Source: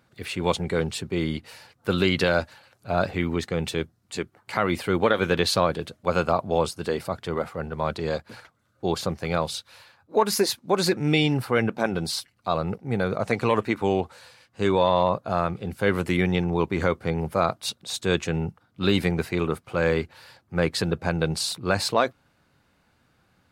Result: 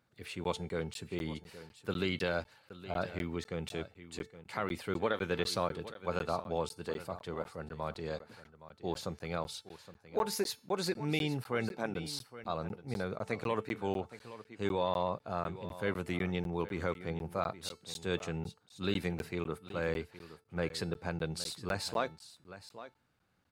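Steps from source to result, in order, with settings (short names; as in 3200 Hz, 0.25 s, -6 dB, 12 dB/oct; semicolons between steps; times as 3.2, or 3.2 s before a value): resonator 440 Hz, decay 0.41 s, mix 50%; on a send: echo 0.818 s -15 dB; on the sum: crackling interface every 0.25 s, samples 512, zero, from 0.44; gain -6 dB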